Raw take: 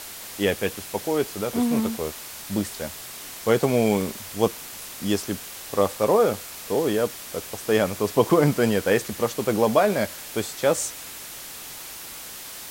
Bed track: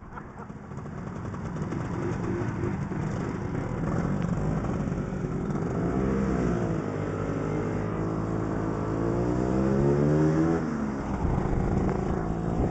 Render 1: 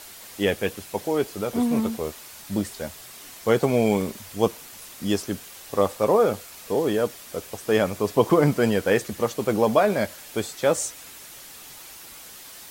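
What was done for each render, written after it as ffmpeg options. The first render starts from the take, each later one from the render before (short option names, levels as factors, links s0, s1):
-af "afftdn=nr=6:nf=-39"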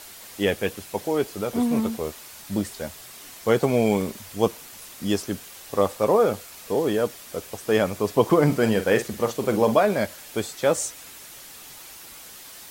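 -filter_complex "[0:a]asettb=1/sr,asplit=3[s0][s1][s2];[s0]atrim=end=8.454[s3];[s1]atrim=start=8.45:end=9.77,asetpts=PTS-STARTPTS,afade=t=in:d=0.004:c=qsin,afade=t=out:st=1.316:d=0.004:c=qsin,asplit=2[s4][s5];[s5]adelay=45,volume=0.316[s6];[s4][s6]amix=inputs=2:normalize=0,atrim=end_sample=58212[s7];[s2]atrim=start=9.766[s8];[s3][s7]acrossfade=d=0.004:c1=hsin:c2=qsin[s9];[s9][s8]acrossfade=d=0.004:c1=qsin:c2=hsin"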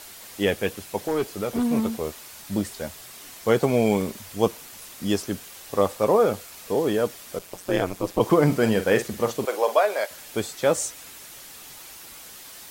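-filter_complex "[0:a]asplit=3[s0][s1][s2];[s0]afade=t=out:st=1.01:d=0.02[s3];[s1]volume=8.91,asoftclip=hard,volume=0.112,afade=t=in:st=1.01:d=0.02,afade=t=out:st=1.64:d=0.02[s4];[s2]afade=t=in:st=1.64:d=0.02[s5];[s3][s4][s5]amix=inputs=3:normalize=0,asplit=3[s6][s7][s8];[s6]afade=t=out:st=7.38:d=0.02[s9];[s7]aeval=exprs='val(0)*sin(2*PI*91*n/s)':c=same,afade=t=in:st=7.38:d=0.02,afade=t=out:st=8.19:d=0.02[s10];[s8]afade=t=in:st=8.19:d=0.02[s11];[s9][s10][s11]amix=inputs=3:normalize=0,asettb=1/sr,asplit=3[s12][s13][s14];[s12]atrim=end=9.454[s15];[s13]atrim=start=9.45:end=10.11,asetpts=PTS-STARTPTS,afade=t=in:d=0.004:c=qsin,afade=t=out:st=0.656:d=0.004:c=qsin,highpass=f=470:w=0.5412,highpass=f=470:w=1.3066[s16];[s14]atrim=start=10.106[s17];[s15][s16]acrossfade=d=0.004:c1=hsin:c2=qsin[s18];[s18][s17]acrossfade=d=0.004:c1=qsin:c2=hsin"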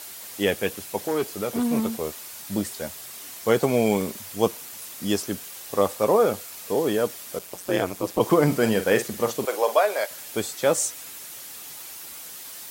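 -af "highpass=f=110:p=1,highshelf=f=6900:g=6"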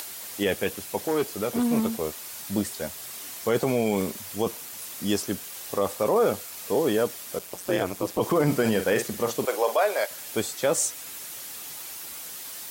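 -af "acompressor=mode=upward:threshold=0.02:ratio=2.5,alimiter=limit=0.224:level=0:latency=1:release=16"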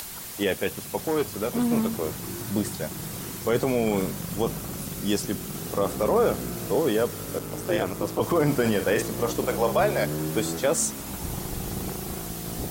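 -filter_complex "[1:a]volume=0.447[s0];[0:a][s0]amix=inputs=2:normalize=0"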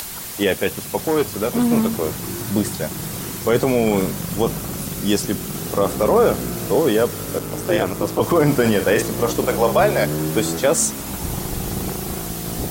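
-af "volume=2.11"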